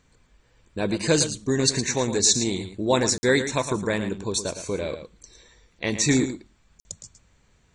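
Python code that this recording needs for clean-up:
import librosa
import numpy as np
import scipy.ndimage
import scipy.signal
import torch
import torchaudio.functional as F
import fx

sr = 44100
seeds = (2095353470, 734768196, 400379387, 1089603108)

y = fx.fix_interpolate(x, sr, at_s=(3.18, 6.8), length_ms=50.0)
y = fx.fix_echo_inverse(y, sr, delay_ms=112, level_db=-10.5)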